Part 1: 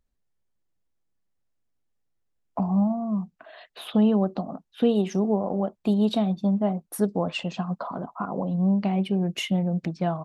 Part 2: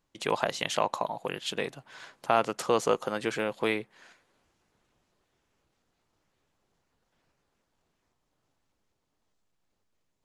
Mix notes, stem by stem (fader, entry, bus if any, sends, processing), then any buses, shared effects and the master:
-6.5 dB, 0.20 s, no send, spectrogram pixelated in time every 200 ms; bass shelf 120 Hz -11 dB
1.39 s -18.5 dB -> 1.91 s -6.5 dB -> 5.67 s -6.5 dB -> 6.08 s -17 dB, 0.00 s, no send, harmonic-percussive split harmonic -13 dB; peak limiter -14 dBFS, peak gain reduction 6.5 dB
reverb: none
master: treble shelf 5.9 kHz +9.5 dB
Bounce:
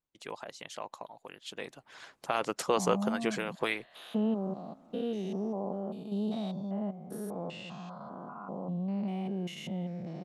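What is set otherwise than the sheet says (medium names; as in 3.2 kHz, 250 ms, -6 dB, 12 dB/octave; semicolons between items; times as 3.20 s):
stem 2 -18.5 dB -> -11.5 dB; master: missing treble shelf 5.9 kHz +9.5 dB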